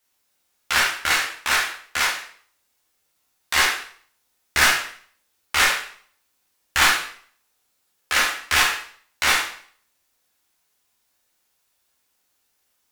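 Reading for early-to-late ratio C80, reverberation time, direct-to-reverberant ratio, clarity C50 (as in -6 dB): 9.5 dB, 0.55 s, -3.0 dB, 5.0 dB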